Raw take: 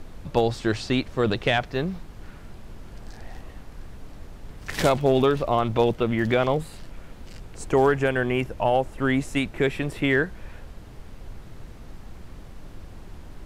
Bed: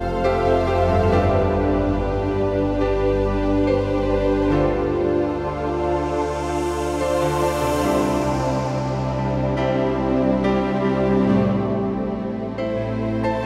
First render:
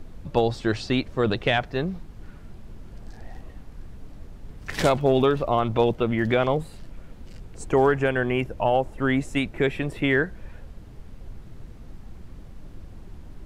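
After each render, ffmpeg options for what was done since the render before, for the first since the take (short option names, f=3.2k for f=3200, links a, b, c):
-af "afftdn=nr=6:nf=-43"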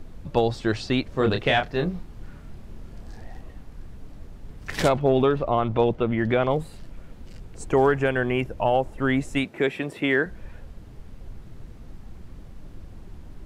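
-filter_complex "[0:a]asettb=1/sr,asplit=3[a][b][c];[a]atrim=end=1.094[d];[b]atrim=start=1.09:end=3.24,asetpts=PTS-STARTPTS,afade=t=in:d=0.004:c=qsin,afade=t=out:st=2.146:d=0.004:c=qsin,asplit=2[e][f];[f]adelay=28,volume=-5dB[g];[e][g]amix=inputs=2:normalize=0,atrim=end_sample=94815[h];[c]atrim=start=3.236[i];[d][h]acrossfade=d=0.004:c1=hsin:c2=qsin[j];[j][i]acrossfade=d=0.004:c1=qsin:c2=hsin,asettb=1/sr,asplit=3[k][l][m];[k]atrim=end=4.884[n];[l]atrim=start=4.88:end=6.51,asetpts=PTS-STARTPTS,afade=t=in:d=0.004:c=qsin,afade=t=out:st=1.626:d=0.004:c=qsin,highshelf=f=4.7k:g=-11.5[o];[m]atrim=start=6.506[p];[n][o]acrossfade=d=0.004:c1=hsin:c2=qsin[q];[q][p]acrossfade=d=0.004:c1=qsin:c2=hsin,asettb=1/sr,asplit=3[r][s][t];[r]atrim=end=9.444[u];[s]atrim=start=9.44:end=10.26,asetpts=PTS-STARTPTS,afade=t=in:d=0.004:c=qsin,afade=t=out:st=0.816:d=0.004:c=qsin,highpass=190[v];[t]atrim=start=10.256[w];[u][v]acrossfade=d=0.004:c1=hsin:c2=qsin[x];[x][w]acrossfade=d=0.004:c1=qsin:c2=hsin"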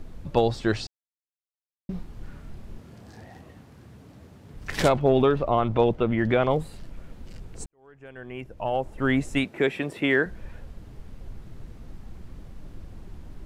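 -filter_complex "[0:a]asettb=1/sr,asplit=3[a][b][c];[a]atrim=end=2.784[d];[b]atrim=start=2.78:end=4.54,asetpts=PTS-STARTPTS,afade=t=in:d=0.004:c=qsin,afade=t=out:st=1.756:d=0.004:c=qsin,highpass=f=84:w=0.5412,highpass=f=84:w=1.3066[e];[c]atrim=start=4.536[f];[d][e]acrossfade=d=0.004:c1=hsin:c2=qsin[g];[g][f]acrossfade=d=0.004:c1=qsin:c2=hsin,asplit=4[h][i][j][k];[h]atrim=end=0.87,asetpts=PTS-STARTPTS,afade=t=out:st=0.866:d=0.004:c=hsin[l];[i]atrim=start=0.87:end=1.89,asetpts=PTS-STARTPTS,volume=0[m];[j]atrim=start=1.89:end=7.66,asetpts=PTS-STARTPTS,afade=t=in:d=0.004:c=hsin,afade=t=out:st=5.766:d=0.004:c=hsin[n];[k]atrim=start=7.66,asetpts=PTS-STARTPTS,afade=t=in:d=1.45:c=qua[o];[l][m][n][o]concat=n=4:v=0:a=1"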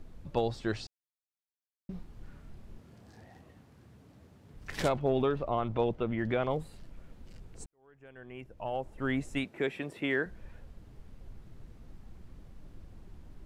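-af "volume=-8.5dB"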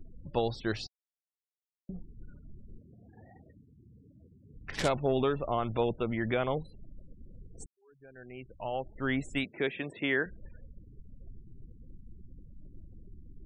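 -af "afftfilt=real='re*gte(hypot(re,im),0.00355)':imag='im*gte(hypot(re,im),0.00355)':win_size=1024:overlap=0.75,adynamicequalizer=threshold=0.00631:dfrequency=1600:dqfactor=0.7:tfrequency=1600:tqfactor=0.7:attack=5:release=100:ratio=0.375:range=2:mode=boostabove:tftype=highshelf"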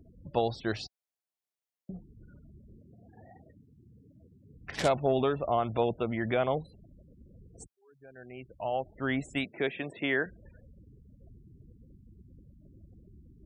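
-af "highpass=56,equalizer=f=680:t=o:w=0.48:g=5.5"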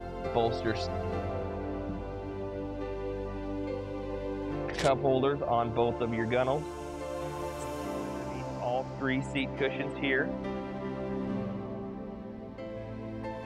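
-filter_complex "[1:a]volume=-16.5dB[a];[0:a][a]amix=inputs=2:normalize=0"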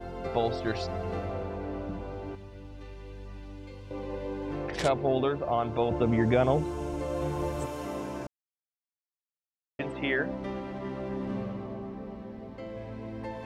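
-filter_complex "[0:a]asettb=1/sr,asplit=3[a][b][c];[a]atrim=end=2.354[d];[b]atrim=start=2.35:end=3.91,asetpts=PTS-STARTPTS,afade=t=in:d=0.004:c=qsin,afade=t=out:st=1.556:d=0.004:c=qsin,equalizer=f=540:w=0.37:g=-14.5[e];[c]atrim=start=3.906[f];[d][e]acrossfade=d=0.004:c1=hsin:c2=qsin[g];[g][f]acrossfade=d=0.004:c1=qsin:c2=hsin,asettb=1/sr,asplit=3[h][i][j];[h]atrim=end=5.914[k];[i]atrim=start=5.91:end=7.66,asetpts=PTS-STARTPTS,afade=t=in:d=0.004:c=qsin,afade=t=out:st=1.746:d=0.004:c=qsin,lowshelf=f=470:g=9[l];[j]atrim=start=7.656[m];[k][l]acrossfade=d=0.004:c1=hsin:c2=qsin[n];[n][m]acrossfade=d=0.004:c1=qsin:c2=hsin,asplit=3[o][p][q];[o]atrim=end=8.27,asetpts=PTS-STARTPTS,afade=t=out:st=8.266:d=0.004:c=hsin[r];[p]atrim=start=8.27:end=9.79,asetpts=PTS-STARTPTS,volume=0[s];[q]atrim=start=9.79,asetpts=PTS-STARTPTS,afade=t=in:d=0.004:c=hsin[t];[r][s][t]concat=n=3:v=0:a=1"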